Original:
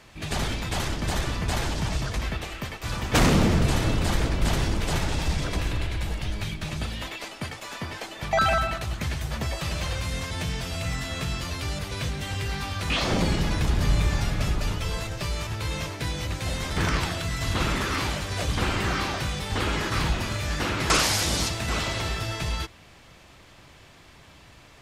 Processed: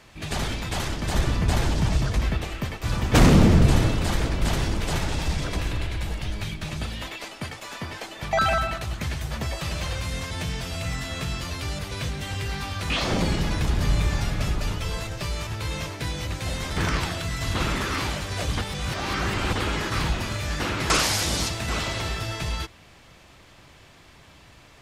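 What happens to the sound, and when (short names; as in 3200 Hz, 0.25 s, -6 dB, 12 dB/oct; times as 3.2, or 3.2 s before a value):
1.14–3.87 low shelf 470 Hz +6 dB
18.61–19.53 reverse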